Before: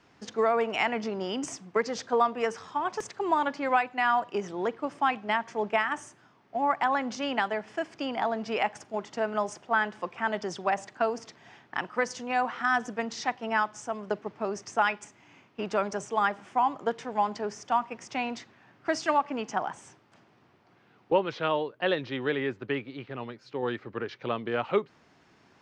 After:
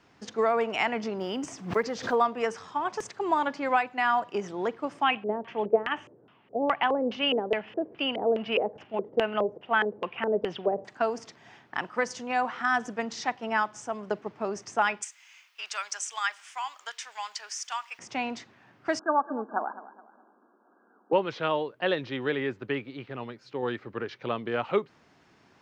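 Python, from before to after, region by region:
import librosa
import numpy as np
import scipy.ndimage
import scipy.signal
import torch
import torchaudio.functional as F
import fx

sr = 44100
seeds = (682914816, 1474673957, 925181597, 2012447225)

y = fx.chain(x, sr, fx.block_float(bits=7),
    fx.high_shelf(hz=7100.0, db=-10.0),
    fx.pre_swell(db_per_s=130.0), at=(1.18, 2.16))
y = fx.chain(y, sr, fx.high_shelf(hz=3200.0, db=-7.5),
    fx.filter_lfo_lowpass(shape='square', hz=2.4, low_hz=470.0, high_hz=2900.0, q=5.6), at=(5.03, 10.85))
y = fx.chain(y, sr, fx.highpass(hz=1500.0, slope=12),
    fx.tilt_eq(slope=4.0), at=(15.02, 17.99))
y = fx.chain(y, sr, fx.brickwall_bandpass(low_hz=200.0, high_hz=1700.0),
    fx.echo_feedback(ms=210, feedback_pct=36, wet_db=-16), at=(18.99, 21.13))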